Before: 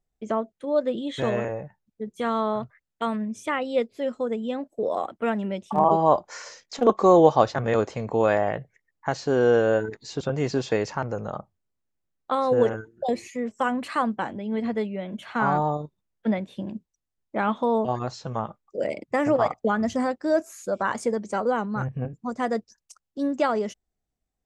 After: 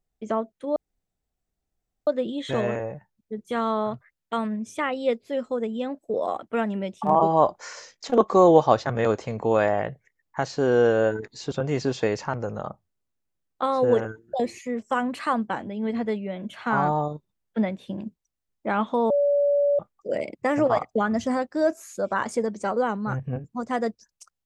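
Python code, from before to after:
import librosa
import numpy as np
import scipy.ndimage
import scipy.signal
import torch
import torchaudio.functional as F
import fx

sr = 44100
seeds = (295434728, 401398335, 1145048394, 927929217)

y = fx.edit(x, sr, fx.insert_room_tone(at_s=0.76, length_s=1.31),
    fx.bleep(start_s=17.79, length_s=0.69, hz=573.0, db=-17.5), tone=tone)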